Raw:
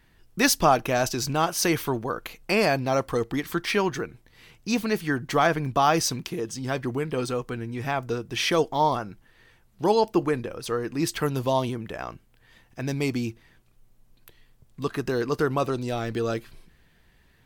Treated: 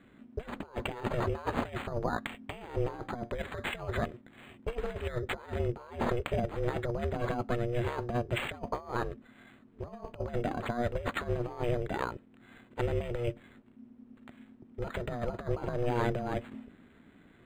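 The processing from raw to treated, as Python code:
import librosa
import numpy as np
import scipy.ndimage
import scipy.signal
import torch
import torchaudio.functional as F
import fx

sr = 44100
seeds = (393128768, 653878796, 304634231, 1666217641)

y = fx.tracing_dist(x, sr, depth_ms=0.067)
y = scipy.signal.sosfilt(scipy.signal.butter(4, 5000.0, 'lowpass', fs=sr, output='sos'), y)
y = fx.high_shelf(y, sr, hz=3100.0, db=3.0)
y = fx.notch(y, sr, hz=3100.0, q=9.8)
y = fx.over_compress(y, sr, threshold_db=-29.0, ratio=-0.5)
y = y * np.sin(2.0 * np.pi * 240.0 * np.arange(len(y)) / sr)
y = np.interp(np.arange(len(y)), np.arange(len(y))[::8], y[::8])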